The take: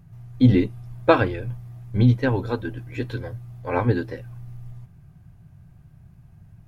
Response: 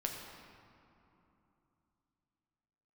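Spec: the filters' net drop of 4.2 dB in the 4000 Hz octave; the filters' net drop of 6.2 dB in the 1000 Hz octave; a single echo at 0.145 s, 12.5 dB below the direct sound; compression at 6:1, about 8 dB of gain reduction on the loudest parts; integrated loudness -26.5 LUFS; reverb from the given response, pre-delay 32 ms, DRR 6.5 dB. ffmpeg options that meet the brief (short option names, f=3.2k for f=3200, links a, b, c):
-filter_complex "[0:a]equalizer=f=1k:t=o:g=-8,equalizer=f=4k:t=o:g=-4.5,acompressor=threshold=-19dB:ratio=6,aecho=1:1:145:0.237,asplit=2[a][b];[1:a]atrim=start_sample=2205,adelay=32[c];[b][c]afir=irnorm=-1:irlink=0,volume=-8dB[d];[a][d]amix=inputs=2:normalize=0,volume=1dB"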